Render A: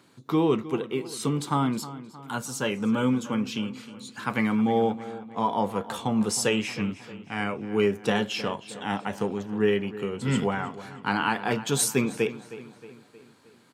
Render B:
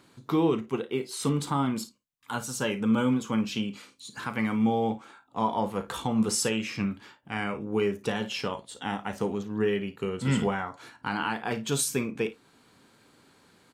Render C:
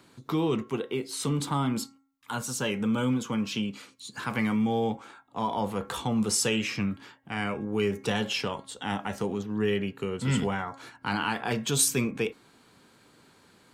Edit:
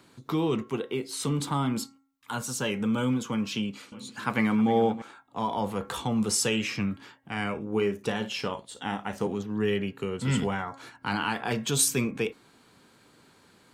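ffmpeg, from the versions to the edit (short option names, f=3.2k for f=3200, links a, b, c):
-filter_complex "[2:a]asplit=3[a][b][c];[a]atrim=end=3.922[d];[0:a]atrim=start=3.918:end=5.022[e];[b]atrim=start=5.018:end=7.582[f];[1:a]atrim=start=7.578:end=9.272[g];[c]atrim=start=9.268[h];[d][e]acrossfade=d=0.004:c1=hsin:c2=hsin[i];[i][f]acrossfade=d=0.004:c1=hsin:c2=hsin[j];[j][g]acrossfade=d=0.004:c1=hsin:c2=hsin[k];[k][h]acrossfade=d=0.004:c1=hsin:c2=hsin"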